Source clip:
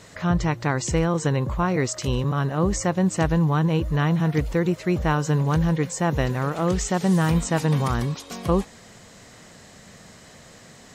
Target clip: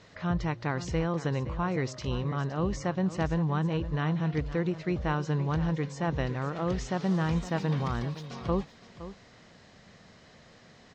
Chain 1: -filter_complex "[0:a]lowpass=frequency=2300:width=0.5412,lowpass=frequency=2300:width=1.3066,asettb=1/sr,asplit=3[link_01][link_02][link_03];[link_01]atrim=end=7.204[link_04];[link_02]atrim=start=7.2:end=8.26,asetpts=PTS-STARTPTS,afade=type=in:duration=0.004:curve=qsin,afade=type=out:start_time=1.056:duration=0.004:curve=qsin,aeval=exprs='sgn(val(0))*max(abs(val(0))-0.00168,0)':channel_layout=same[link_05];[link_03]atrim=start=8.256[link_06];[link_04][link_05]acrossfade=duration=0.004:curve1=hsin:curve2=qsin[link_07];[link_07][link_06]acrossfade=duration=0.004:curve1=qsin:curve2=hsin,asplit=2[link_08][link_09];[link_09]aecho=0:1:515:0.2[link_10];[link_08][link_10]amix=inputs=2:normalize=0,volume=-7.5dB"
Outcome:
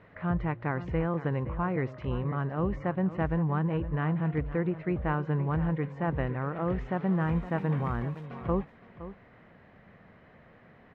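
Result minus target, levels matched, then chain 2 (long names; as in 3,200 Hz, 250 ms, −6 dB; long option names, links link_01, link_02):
4,000 Hz band −12.0 dB
-filter_complex "[0:a]lowpass=frequency=5400:width=0.5412,lowpass=frequency=5400:width=1.3066,asettb=1/sr,asplit=3[link_01][link_02][link_03];[link_01]atrim=end=7.204[link_04];[link_02]atrim=start=7.2:end=8.26,asetpts=PTS-STARTPTS,afade=type=in:duration=0.004:curve=qsin,afade=type=out:start_time=1.056:duration=0.004:curve=qsin,aeval=exprs='sgn(val(0))*max(abs(val(0))-0.00168,0)':channel_layout=same[link_05];[link_03]atrim=start=8.256[link_06];[link_04][link_05]acrossfade=duration=0.004:curve1=hsin:curve2=qsin[link_07];[link_07][link_06]acrossfade=duration=0.004:curve1=qsin:curve2=hsin,asplit=2[link_08][link_09];[link_09]aecho=0:1:515:0.2[link_10];[link_08][link_10]amix=inputs=2:normalize=0,volume=-7.5dB"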